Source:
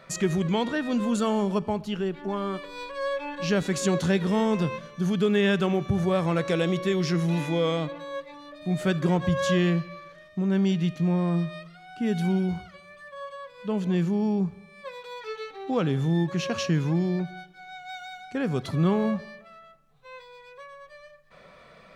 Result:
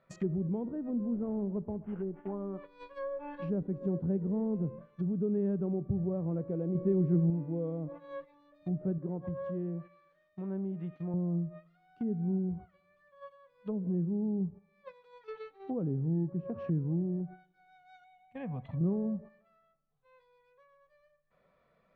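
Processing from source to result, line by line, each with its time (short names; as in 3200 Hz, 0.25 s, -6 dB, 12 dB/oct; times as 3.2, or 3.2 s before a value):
1.14–2.33 CVSD 16 kbps
6.75–7.3 gain +5.5 dB
8.98–11.14 low shelf 290 Hz -9.5 dB
18.04–18.81 fixed phaser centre 1400 Hz, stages 6
whole clip: LPF 1300 Hz 6 dB/oct; gate -38 dBFS, range -11 dB; treble ducked by the level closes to 430 Hz, closed at -24.5 dBFS; gain -6.5 dB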